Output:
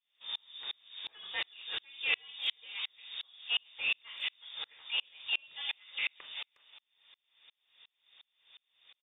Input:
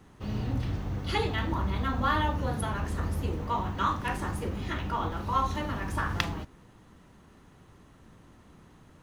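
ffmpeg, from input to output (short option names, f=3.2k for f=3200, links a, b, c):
-filter_complex "[0:a]highpass=200,asplit=2[a][b];[b]aeval=exprs='0.0422*(abs(mod(val(0)/0.0422+3,4)-2)-1)':c=same,volume=-7dB[c];[a][c]amix=inputs=2:normalize=0,lowpass=f=3.2k:t=q:w=0.5098,lowpass=f=3.2k:t=q:w=0.6013,lowpass=f=3.2k:t=q:w=0.9,lowpass=f=3.2k:t=q:w=2.563,afreqshift=-3800,asplit=2[d][e];[e]adelay=360,highpass=300,lowpass=3.4k,asoftclip=type=hard:threshold=-20.5dB,volume=-15dB[f];[d][f]amix=inputs=2:normalize=0,aeval=exprs='val(0)*pow(10,-37*if(lt(mod(-2.8*n/s,1),2*abs(-2.8)/1000),1-mod(-2.8*n/s,1)/(2*abs(-2.8)/1000),(mod(-2.8*n/s,1)-2*abs(-2.8)/1000)/(1-2*abs(-2.8)/1000))/20)':c=same"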